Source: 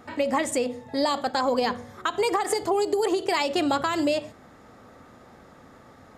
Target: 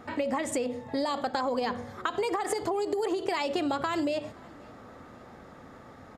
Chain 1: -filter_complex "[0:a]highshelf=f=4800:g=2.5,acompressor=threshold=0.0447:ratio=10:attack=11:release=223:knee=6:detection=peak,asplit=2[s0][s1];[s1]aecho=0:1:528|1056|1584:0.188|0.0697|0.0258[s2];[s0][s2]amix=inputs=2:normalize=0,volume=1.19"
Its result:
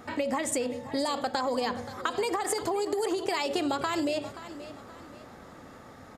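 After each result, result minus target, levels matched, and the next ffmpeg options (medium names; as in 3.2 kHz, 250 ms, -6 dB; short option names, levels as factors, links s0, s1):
echo-to-direct +11.5 dB; 8 kHz band +5.0 dB
-filter_complex "[0:a]highshelf=f=4800:g=2.5,acompressor=threshold=0.0447:ratio=10:attack=11:release=223:knee=6:detection=peak,asplit=2[s0][s1];[s1]aecho=0:1:528|1056:0.0501|0.0185[s2];[s0][s2]amix=inputs=2:normalize=0,volume=1.19"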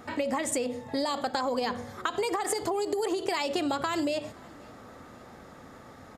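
8 kHz band +5.0 dB
-filter_complex "[0:a]highshelf=f=4800:g=-6.5,acompressor=threshold=0.0447:ratio=10:attack=11:release=223:knee=6:detection=peak,asplit=2[s0][s1];[s1]aecho=0:1:528|1056:0.0501|0.0185[s2];[s0][s2]amix=inputs=2:normalize=0,volume=1.19"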